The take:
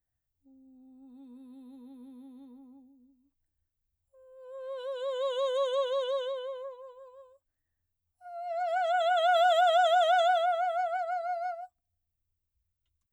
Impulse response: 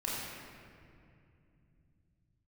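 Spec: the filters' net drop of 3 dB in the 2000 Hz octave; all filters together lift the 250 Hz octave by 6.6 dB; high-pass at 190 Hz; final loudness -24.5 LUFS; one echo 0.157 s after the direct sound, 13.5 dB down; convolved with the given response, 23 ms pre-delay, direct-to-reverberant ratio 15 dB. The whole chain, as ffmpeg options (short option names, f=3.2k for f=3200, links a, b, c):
-filter_complex "[0:a]highpass=190,equalizer=f=250:t=o:g=8,equalizer=f=2k:t=o:g=-5.5,aecho=1:1:157:0.211,asplit=2[a][b];[1:a]atrim=start_sample=2205,adelay=23[c];[b][c]afir=irnorm=-1:irlink=0,volume=-20dB[d];[a][d]amix=inputs=2:normalize=0,volume=3.5dB"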